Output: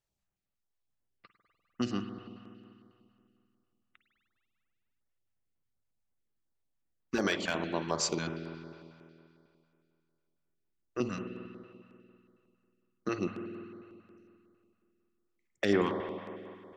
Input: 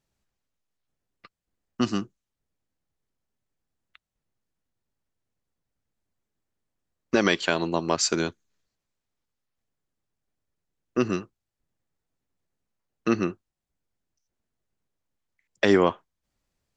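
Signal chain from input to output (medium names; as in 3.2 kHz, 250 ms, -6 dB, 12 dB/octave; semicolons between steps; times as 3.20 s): overload inside the chain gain 9.5 dB; spring tank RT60 2.5 s, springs 49 ms, chirp 60 ms, DRR 5.5 dB; step-sequenced notch 11 Hz 220–7200 Hz; trim -7.5 dB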